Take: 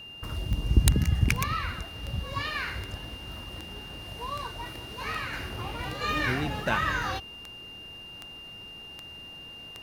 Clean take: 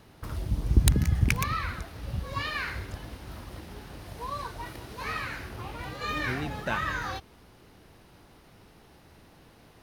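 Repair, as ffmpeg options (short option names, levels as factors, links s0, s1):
-af "adeclick=t=4,bandreject=f=2800:w=30,asetnsamples=n=441:p=0,asendcmd='5.33 volume volume -3dB',volume=1"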